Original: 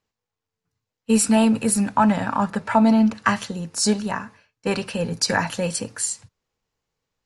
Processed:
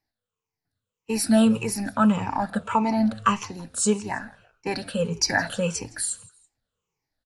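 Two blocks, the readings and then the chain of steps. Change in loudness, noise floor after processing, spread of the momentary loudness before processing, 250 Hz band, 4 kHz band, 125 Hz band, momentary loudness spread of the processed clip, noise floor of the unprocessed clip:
-3.0 dB, under -85 dBFS, 10 LU, -3.5 dB, -2.5 dB, -3.0 dB, 12 LU, under -85 dBFS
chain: drifting ripple filter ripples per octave 0.75, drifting -1.7 Hz, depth 15 dB; on a send: frequency-shifting echo 165 ms, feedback 35%, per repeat -110 Hz, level -22 dB; on the sum: trim -5.5 dB

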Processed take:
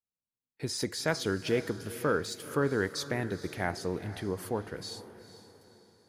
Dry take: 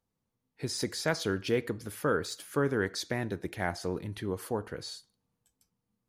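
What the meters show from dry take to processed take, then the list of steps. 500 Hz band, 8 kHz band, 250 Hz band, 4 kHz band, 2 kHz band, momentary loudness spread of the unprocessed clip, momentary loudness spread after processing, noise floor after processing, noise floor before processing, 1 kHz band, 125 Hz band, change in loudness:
+0.5 dB, 0.0 dB, 0.0 dB, 0.0 dB, 0.0 dB, 9 LU, 11 LU, under -85 dBFS, -84 dBFS, 0.0 dB, 0.0 dB, 0.0 dB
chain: gate with hold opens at -50 dBFS; echo that smears into a reverb 464 ms, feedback 43%, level -14 dB

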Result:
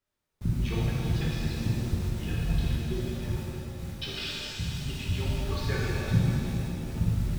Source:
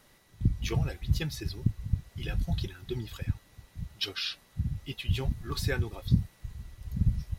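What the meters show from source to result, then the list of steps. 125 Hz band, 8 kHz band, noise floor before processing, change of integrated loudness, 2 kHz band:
+2.5 dB, +3.0 dB, -61 dBFS, +2.0 dB, +2.5 dB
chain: low-pass 4 kHz; added noise pink -49 dBFS; gate -40 dBFS, range -35 dB; flange 0.58 Hz, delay 3 ms, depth 3.8 ms, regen -74%; pitch-shifted reverb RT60 3.1 s, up +7 st, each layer -8 dB, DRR -5.5 dB

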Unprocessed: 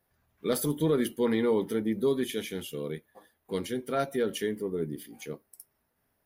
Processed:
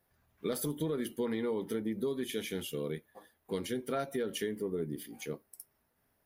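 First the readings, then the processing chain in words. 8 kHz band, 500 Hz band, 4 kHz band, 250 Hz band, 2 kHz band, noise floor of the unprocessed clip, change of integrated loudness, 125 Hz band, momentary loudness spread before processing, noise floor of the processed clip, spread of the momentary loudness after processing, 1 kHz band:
-3.5 dB, -6.0 dB, -3.5 dB, -6.0 dB, -5.0 dB, -76 dBFS, -6.5 dB, -5.5 dB, 14 LU, -76 dBFS, 8 LU, -6.5 dB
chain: compression 5:1, threshold -31 dBFS, peak gain reduction 9.5 dB

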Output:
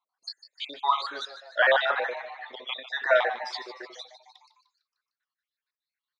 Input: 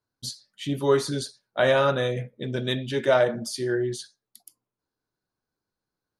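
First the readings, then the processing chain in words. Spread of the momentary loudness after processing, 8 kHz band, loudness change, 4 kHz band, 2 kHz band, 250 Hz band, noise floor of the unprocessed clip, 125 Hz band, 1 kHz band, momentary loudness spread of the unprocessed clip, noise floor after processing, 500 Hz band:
20 LU, under -15 dB, -1.5 dB, -0.5 dB, +4.5 dB, under -20 dB, under -85 dBFS, under -40 dB, +3.0 dB, 15 LU, under -85 dBFS, -6.0 dB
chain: random holes in the spectrogram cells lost 60%; cabinet simulation 320–4700 Hz, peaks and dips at 360 Hz -5 dB, 610 Hz -5 dB, 1.1 kHz +7 dB, 1.8 kHz +7 dB, 3.7 kHz +7 dB; on a send: frequency-shifting echo 151 ms, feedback 52%, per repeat +130 Hz, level -13.5 dB; on the sum: high-pass sweep 710 Hz -> 2.2 kHz, 3.72–5.62 s

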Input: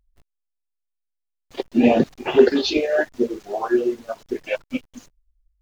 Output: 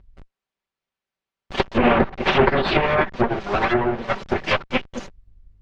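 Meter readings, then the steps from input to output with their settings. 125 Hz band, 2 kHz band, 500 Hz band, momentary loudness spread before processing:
+10.0 dB, +7.0 dB, -1.5 dB, 15 LU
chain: comb filter that takes the minimum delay 5.2 ms; low-pass that closes with the level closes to 1.6 kHz, closed at -17 dBFS; Bessel low-pass 2.6 kHz, order 2; spectrum-flattening compressor 2:1

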